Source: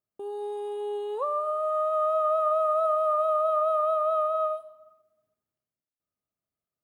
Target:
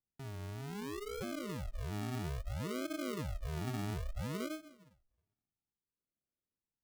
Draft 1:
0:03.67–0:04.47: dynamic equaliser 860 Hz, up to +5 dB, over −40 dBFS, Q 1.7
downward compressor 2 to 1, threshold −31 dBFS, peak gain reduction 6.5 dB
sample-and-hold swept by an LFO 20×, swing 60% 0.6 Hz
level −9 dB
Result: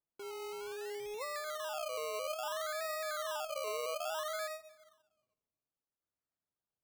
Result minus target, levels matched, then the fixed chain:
sample-and-hold swept by an LFO: distortion −29 dB
0:03.67–0:04.47: dynamic equaliser 860 Hz, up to +5 dB, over −40 dBFS, Q 1.7
downward compressor 2 to 1, threshold −31 dBFS, peak gain reduction 6.5 dB
sample-and-hold swept by an LFO 67×, swing 60% 0.6 Hz
level −9 dB

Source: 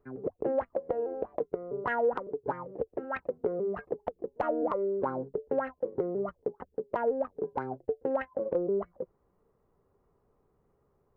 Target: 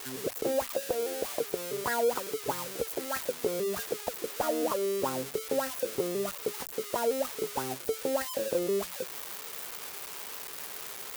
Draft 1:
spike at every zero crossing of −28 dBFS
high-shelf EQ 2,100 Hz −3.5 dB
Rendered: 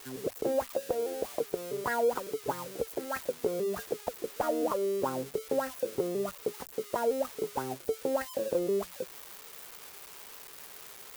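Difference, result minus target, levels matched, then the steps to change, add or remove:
spike at every zero crossing: distortion −7 dB
change: spike at every zero crossing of −21 dBFS

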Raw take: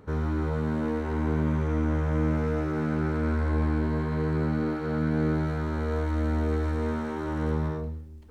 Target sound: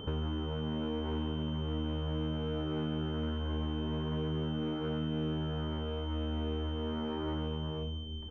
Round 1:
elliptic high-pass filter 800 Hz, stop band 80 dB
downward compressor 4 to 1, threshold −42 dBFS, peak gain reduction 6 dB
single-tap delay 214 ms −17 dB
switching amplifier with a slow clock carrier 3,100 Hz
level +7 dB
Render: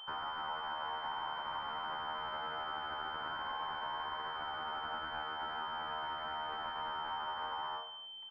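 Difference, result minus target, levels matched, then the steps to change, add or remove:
1,000 Hz band +13.5 dB
remove: elliptic high-pass filter 800 Hz, stop band 80 dB

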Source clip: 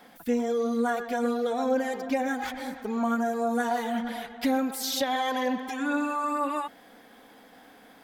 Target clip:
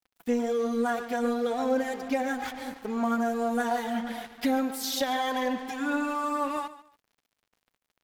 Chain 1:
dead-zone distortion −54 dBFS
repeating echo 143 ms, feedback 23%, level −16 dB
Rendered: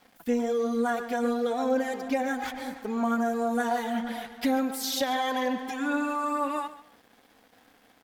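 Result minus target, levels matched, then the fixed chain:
dead-zone distortion: distortion −8 dB
dead-zone distortion −45.5 dBFS
repeating echo 143 ms, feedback 23%, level −16 dB

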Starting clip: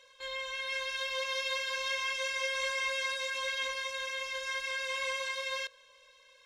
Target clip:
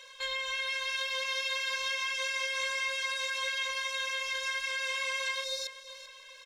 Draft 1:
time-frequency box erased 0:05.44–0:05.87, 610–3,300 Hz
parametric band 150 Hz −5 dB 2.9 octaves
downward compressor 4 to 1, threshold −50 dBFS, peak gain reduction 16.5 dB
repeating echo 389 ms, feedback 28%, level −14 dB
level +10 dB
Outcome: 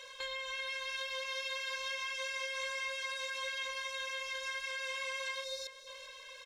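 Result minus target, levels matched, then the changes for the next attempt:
downward compressor: peak gain reduction +6.5 dB; 125 Hz band +4.5 dB
change: parametric band 150 Hz −16.5 dB 2.9 octaves
change: downward compressor 4 to 1, threshold −42 dBFS, peak gain reduction 10 dB

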